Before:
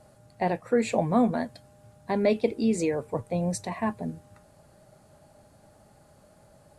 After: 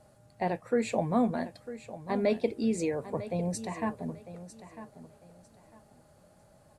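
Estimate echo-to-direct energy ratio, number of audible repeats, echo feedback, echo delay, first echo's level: -13.5 dB, 2, 24%, 0.95 s, -14.0 dB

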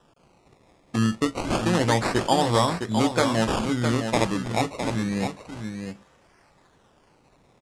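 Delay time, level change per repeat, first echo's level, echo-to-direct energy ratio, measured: 0.66 s, no steady repeat, -7.0 dB, -7.0 dB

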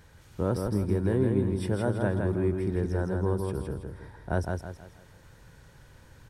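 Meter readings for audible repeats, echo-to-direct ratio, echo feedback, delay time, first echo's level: 4, -3.5 dB, 38%, 0.162 s, -4.0 dB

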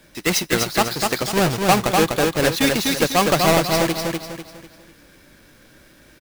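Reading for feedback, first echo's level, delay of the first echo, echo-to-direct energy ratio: 37%, -3.5 dB, 0.248 s, -3.0 dB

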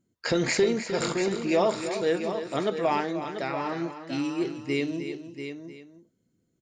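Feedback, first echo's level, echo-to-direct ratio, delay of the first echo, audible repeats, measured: no steady repeat, -10.5 dB, -6.5 dB, 0.307 s, 3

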